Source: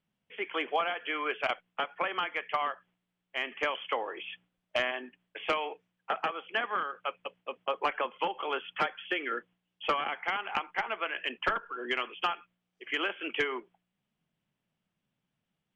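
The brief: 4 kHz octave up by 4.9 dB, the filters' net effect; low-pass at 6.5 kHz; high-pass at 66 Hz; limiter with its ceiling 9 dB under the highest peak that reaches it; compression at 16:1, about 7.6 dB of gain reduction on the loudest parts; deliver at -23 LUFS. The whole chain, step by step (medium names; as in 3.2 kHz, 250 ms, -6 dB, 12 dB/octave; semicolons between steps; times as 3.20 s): high-pass 66 Hz; low-pass 6.5 kHz; peaking EQ 4 kHz +8 dB; compression 16:1, threshold -31 dBFS; trim +16.5 dB; peak limiter -12 dBFS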